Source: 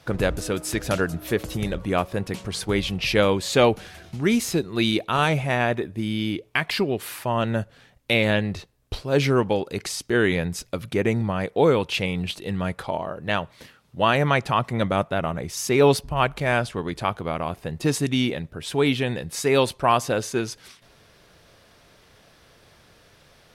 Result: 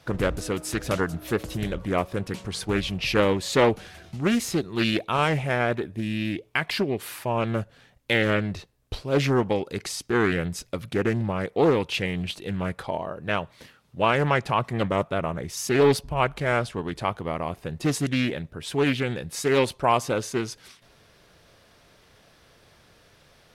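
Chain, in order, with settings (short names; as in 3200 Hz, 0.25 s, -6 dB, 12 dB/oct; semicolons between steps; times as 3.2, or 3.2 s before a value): Doppler distortion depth 0.37 ms; gain -2 dB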